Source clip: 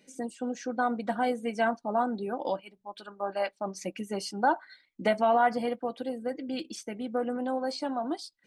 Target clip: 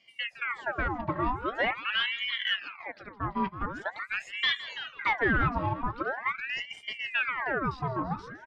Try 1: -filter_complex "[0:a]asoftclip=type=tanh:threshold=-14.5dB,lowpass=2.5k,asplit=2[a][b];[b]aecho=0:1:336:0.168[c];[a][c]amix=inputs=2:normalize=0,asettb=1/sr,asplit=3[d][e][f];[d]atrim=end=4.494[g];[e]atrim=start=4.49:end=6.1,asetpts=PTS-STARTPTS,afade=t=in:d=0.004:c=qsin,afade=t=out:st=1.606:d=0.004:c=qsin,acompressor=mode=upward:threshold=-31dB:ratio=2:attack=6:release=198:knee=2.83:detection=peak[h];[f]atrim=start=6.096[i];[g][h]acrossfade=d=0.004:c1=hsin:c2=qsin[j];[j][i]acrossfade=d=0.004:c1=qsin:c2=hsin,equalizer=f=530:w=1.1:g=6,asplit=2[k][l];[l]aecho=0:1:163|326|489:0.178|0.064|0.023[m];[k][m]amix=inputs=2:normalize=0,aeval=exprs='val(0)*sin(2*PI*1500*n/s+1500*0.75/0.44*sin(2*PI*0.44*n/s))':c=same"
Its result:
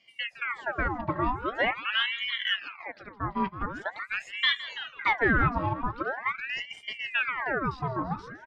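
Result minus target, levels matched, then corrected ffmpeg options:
soft clip: distortion -9 dB
-filter_complex "[0:a]asoftclip=type=tanh:threshold=-21dB,lowpass=2.5k,asplit=2[a][b];[b]aecho=0:1:336:0.168[c];[a][c]amix=inputs=2:normalize=0,asettb=1/sr,asplit=3[d][e][f];[d]atrim=end=4.494[g];[e]atrim=start=4.49:end=6.1,asetpts=PTS-STARTPTS,afade=t=in:d=0.004:c=qsin,afade=t=out:st=1.606:d=0.004:c=qsin,acompressor=mode=upward:threshold=-31dB:ratio=2:attack=6:release=198:knee=2.83:detection=peak[h];[f]atrim=start=6.096[i];[g][h]acrossfade=d=0.004:c1=hsin:c2=qsin[j];[j][i]acrossfade=d=0.004:c1=qsin:c2=hsin,equalizer=f=530:w=1.1:g=6,asplit=2[k][l];[l]aecho=0:1:163|326|489:0.178|0.064|0.023[m];[k][m]amix=inputs=2:normalize=0,aeval=exprs='val(0)*sin(2*PI*1500*n/s+1500*0.75/0.44*sin(2*PI*0.44*n/s))':c=same"

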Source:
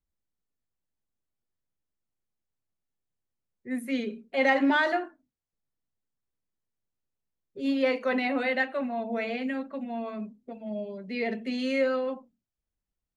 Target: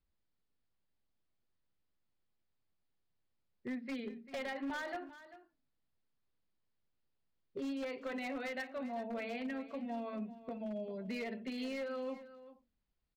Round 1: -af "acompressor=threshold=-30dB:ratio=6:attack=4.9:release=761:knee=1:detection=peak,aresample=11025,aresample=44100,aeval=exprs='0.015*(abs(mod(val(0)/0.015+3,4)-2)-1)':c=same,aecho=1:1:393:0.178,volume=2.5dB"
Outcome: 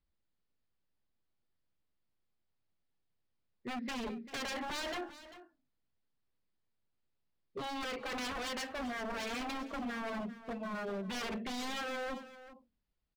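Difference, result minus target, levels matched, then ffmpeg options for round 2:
compressor: peak gain reduction -7.5 dB
-af "acompressor=threshold=-39dB:ratio=6:attack=4.9:release=761:knee=1:detection=peak,aresample=11025,aresample=44100,aeval=exprs='0.015*(abs(mod(val(0)/0.015+3,4)-2)-1)':c=same,aecho=1:1:393:0.178,volume=2.5dB"

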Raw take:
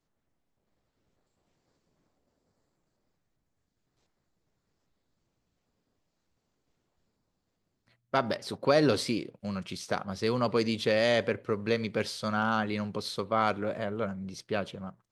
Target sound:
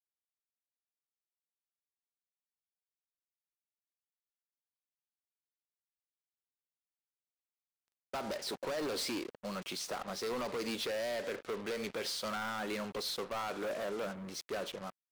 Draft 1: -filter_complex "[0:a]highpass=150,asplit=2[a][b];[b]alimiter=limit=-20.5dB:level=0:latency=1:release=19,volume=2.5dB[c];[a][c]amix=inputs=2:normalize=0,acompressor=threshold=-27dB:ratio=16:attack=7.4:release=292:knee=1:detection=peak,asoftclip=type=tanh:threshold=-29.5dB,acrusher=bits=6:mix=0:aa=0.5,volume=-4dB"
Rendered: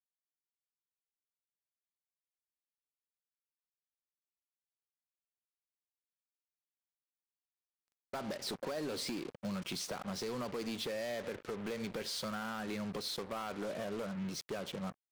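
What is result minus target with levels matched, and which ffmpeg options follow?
125 Hz band +7.0 dB; compressor: peak gain reduction +6.5 dB
-filter_complex "[0:a]highpass=340,asplit=2[a][b];[b]alimiter=limit=-20.5dB:level=0:latency=1:release=19,volume=2.5dB[c];[a][c]amix=inputs=2:normalize=0,acompressor=threshold=-20.5dB:ratio=16:attack=7.4:release=292:knee=1:detection=peak,asoftclip=type=tanh:threshold=-29.5dB,acrusher=bits=6:mix=0:aa=0.5,volume=-4dB"

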